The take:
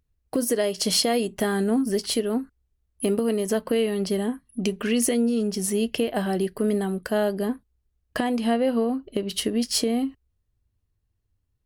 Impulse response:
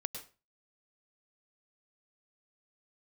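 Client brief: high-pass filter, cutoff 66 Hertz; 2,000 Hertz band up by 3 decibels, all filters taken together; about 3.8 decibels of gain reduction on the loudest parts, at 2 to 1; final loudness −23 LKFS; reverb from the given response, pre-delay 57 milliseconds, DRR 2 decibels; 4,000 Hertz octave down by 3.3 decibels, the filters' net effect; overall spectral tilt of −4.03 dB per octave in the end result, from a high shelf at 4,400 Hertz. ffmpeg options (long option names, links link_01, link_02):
-filter_complex "[0:a]highpass=66,equalizer=frequency=2000:width_type=o:gain=5,equalizer=frequency=4000:width_type=o:gain=-8.5,highshelf=frequency=4400:gain=4,acompressor=threshold=-25dB:ratio=2,asplit=2[link_01][link_02];[1:a]atrim=start_sample=2205,adelay=57[link_03];[link_02][link_03]afir=irnorm=-1:irlink=0,volume=-2dB[link_04];[link_01][link_04]amix=inputs=2:normalize=0,volume=2.5dB"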